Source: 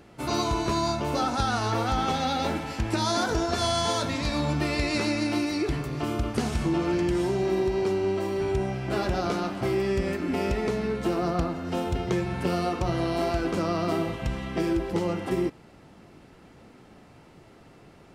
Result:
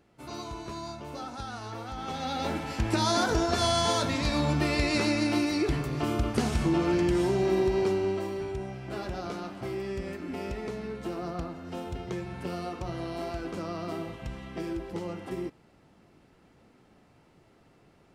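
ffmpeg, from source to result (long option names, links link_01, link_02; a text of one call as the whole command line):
ffmpeg -i in.wav -af "afade=type=in:start_time=1.96:duration=0.9:silence=0.237137,afade=type=out:start_time=7.79:duration=0.73:silence=0.375837" out.wav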